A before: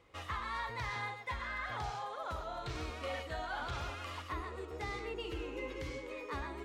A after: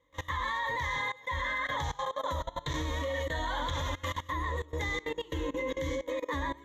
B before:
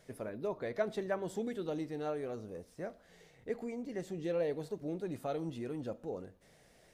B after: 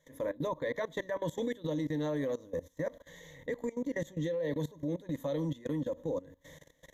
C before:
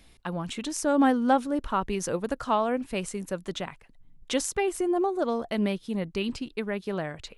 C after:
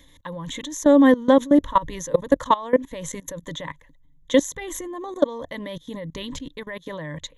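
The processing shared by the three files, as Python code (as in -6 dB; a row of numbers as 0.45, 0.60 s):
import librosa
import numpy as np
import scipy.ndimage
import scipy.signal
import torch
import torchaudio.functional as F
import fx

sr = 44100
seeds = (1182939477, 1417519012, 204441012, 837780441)

y = fx.ripple_eq(x, sr, per_octave=1.1, db=17)
y = fx.level_steps(y, sr, step_db=20)
y = y * librosa.db_to_amplitude(7.5)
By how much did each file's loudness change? +7.0, +3.0, +8.0 LU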